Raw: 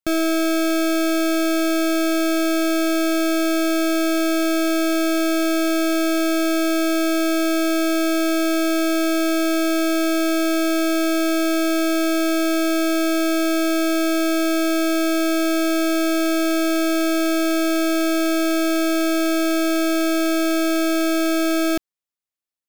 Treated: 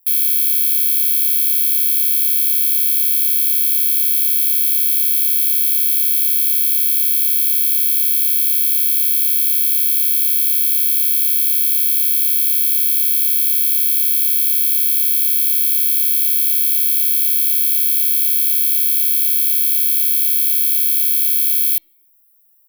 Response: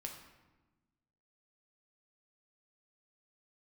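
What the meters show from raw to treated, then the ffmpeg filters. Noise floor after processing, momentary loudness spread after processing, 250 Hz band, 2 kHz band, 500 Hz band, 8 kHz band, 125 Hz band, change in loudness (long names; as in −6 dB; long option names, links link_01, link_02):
−15 dBFS, 0 LU, −23.5 dB, −11.0 dB, below −25 dB, +10.5 dB, can't be measured, +8.0 dB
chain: -filter_complex "[0:a]tiltshelf=frequency=840:gain=-6,aecho=1:1:4.1:0.49,alimiter=limit=-13.5dB:level=0:latency=1,aexciter=amount=5.3:drive=4.9:freq=2400,acrusher=bits=8:dc=4:mix=0:aa=0.000001,volume=13.5dB,asoftclip=hard,volume=-13.5dB,aexciter=amount=12.4:drive=9.3:freq=9900,asplit=2[link_01][link_02];[1:a]atrim=start_sample=2205,asetrate=70560,aresample=44100,lowpass=3900[link_03];[link_02][link_03]afir=irnorm=-1:irlink=0,volume=-11dB[link_04];[link_01][link_04]amix=inputs=2:normalize=0,volume=-14dB"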